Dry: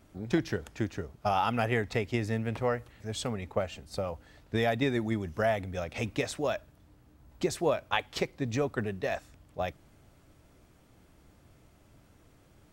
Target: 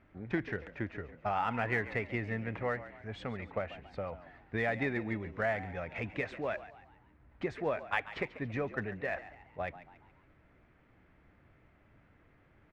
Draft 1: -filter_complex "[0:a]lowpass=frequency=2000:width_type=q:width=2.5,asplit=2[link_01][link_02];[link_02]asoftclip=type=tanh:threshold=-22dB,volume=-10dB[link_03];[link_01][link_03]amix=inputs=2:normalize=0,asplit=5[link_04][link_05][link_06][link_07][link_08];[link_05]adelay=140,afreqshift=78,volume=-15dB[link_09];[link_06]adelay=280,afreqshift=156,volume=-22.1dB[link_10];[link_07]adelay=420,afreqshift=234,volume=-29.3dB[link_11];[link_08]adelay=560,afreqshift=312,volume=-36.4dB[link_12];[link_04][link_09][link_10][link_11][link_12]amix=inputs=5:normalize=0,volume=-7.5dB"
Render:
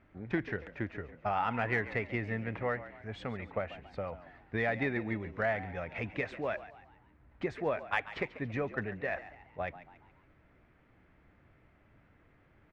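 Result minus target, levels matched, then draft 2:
soft clipping: distortion −6 dB
-filter_complex "[0:a]lowpass=frequency=2000:width_type=q:width=2.5,asplit=2[link_01][link_02];[link_02]asoftclip=type=tanh:threshold=-30.5dB,volume=-10dB[link_03];[link_01][link_03]amix=inputs=2:normalize=0,asplit=5[link_04][link_05][link_06][link_07][link_08];[link_05]adelay=140,afreqshift=78,volume=-15dB[link_09];[link_06]adelay=280,afreqshift=156,volume=-22.1dB[link_10];[link_07]adelay=420,afreqshift=234,volume=-29.3dB[link_11];[link_08]adelay=560,afreqshift=312,volume=-36.4dB[link_12];[link_04][link_09][link_10][link_11][link_12]amix=inputs=5:normalize=0,volume=-7.5dB"

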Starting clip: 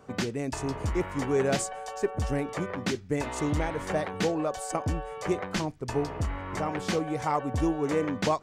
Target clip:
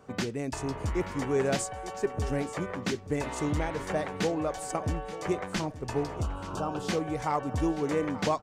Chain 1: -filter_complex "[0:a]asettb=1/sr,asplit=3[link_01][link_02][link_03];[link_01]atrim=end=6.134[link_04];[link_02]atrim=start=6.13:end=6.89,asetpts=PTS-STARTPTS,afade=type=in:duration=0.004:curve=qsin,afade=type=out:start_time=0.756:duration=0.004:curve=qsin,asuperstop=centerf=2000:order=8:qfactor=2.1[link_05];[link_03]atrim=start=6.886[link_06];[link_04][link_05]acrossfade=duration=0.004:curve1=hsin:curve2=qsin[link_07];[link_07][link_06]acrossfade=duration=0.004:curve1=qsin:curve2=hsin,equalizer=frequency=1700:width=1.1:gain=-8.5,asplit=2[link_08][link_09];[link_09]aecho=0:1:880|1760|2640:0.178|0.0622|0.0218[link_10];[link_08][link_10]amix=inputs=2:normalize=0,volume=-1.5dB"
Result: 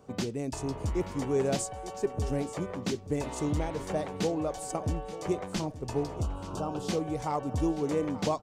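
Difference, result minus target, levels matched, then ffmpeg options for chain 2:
2,000 Hz band −6.0 dB
-filter_complex "[0:a]asettb=1/sr,asplit=3[link_01][link_02][link_03];[link_01]atrim=end=6.134[link_04];[link_02]atrim=start=6.13:end=6.89,asetpts=PTS-STARTPTS,afade=type=in:duration=0.004:curve=qsin,afade=type=out:start_time=0.756:duration=0.004:curve=qsin,asuperstop=centerf=2000:order=8:qfactor=2.1[link_05];[link_03]atrim=start=6.886[link_06];[link_04][link_05]acrossfade=duration=0.004:curve1=hsin:curve2=qsin[link_07];[link_07][link_06]acrossfade=duration=0.004:curve1=qsin:curve2=hsin,asplit=2[link_08][link_09];[link_09]aecho=0:1:880|1760|2640:0.178|0.0622|0.0218[link_10];[link_08][link_10]amix=inputs=2:normalize=0,volume=-1.5dB"

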